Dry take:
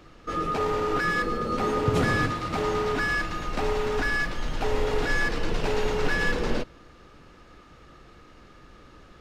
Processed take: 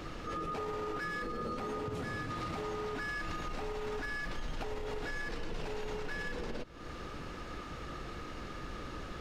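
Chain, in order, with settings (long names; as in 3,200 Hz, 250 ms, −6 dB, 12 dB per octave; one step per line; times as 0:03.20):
downward compressor 12 to 1, threshold −38 dBFS, peak gain reduction 20.5 dB
brickwall limiter −37.5 dBFS, peak gain reduction 9.5 dB
level +7.5 dB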